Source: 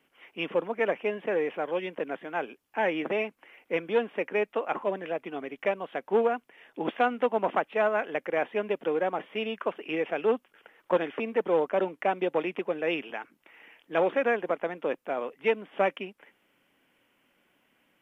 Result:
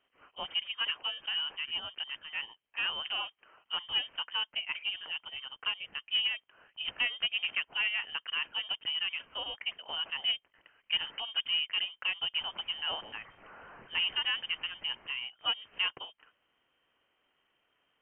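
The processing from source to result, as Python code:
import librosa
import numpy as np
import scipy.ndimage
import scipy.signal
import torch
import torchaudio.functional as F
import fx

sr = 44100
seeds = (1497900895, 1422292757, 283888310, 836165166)

y = fx.crossing_spikes(x, sr, level_db=-28.0, at=(12.41, 15.11))
y = scipy.signal.sosfilt(scipy.signal.butter(2, 140.0, 'highpass', fs=sr, output='sos'), y)
y = fx.freq_invert(y, sr, carrier_hz=3400)
y = y * librosa.db_to_amplitude(-6.5)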